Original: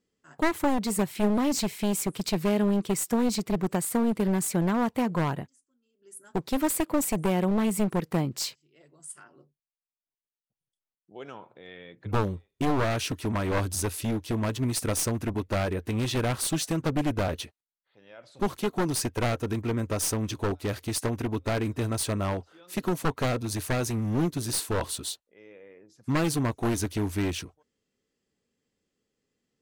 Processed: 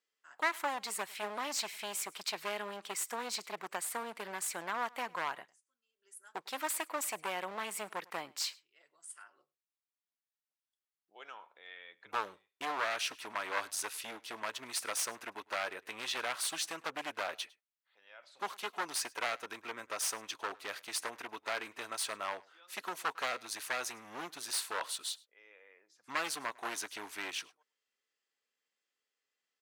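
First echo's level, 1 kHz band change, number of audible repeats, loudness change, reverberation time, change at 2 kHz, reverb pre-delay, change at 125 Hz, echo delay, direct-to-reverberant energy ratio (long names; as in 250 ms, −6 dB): −24.0 dB, −5.0 dB, 1, −9.5 dB, no reverb audible, −1.5 dB, no reverb audible, −35.0 dB, 103 ms, no reverb audible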